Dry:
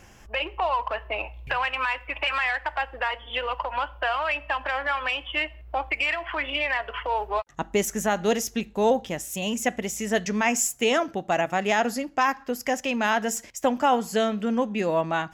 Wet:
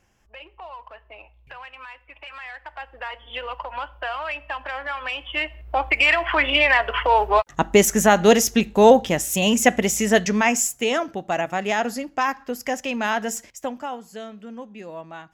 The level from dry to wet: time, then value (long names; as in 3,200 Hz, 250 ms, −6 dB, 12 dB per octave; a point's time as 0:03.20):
0:02.27 −14 dB
0:03.29 −3 dB
0:04.96 −3 dB
0:06.14 +9 dB
0:09.95 +9 dB
0:10.87 0 dB
0:13.37 0 dB
0:14.00 −12.5 dB